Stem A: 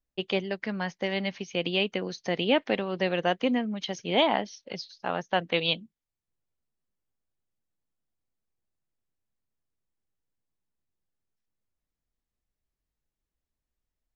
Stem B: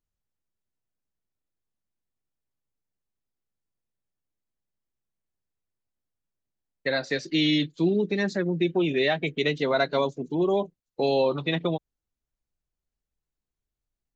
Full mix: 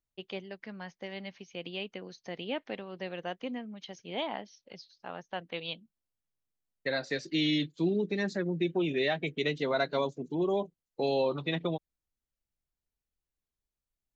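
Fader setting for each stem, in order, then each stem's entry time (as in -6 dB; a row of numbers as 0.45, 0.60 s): -11.5, -5.5 dB; 0.00, 0.00 s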